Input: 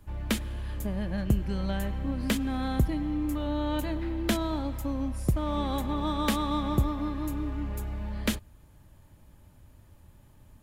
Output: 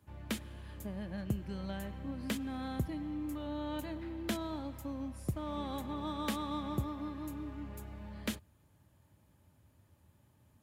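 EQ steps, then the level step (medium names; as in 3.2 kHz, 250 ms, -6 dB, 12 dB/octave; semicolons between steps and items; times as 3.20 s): high-pass 73 Hz 24 dB/octave; -8.5 dB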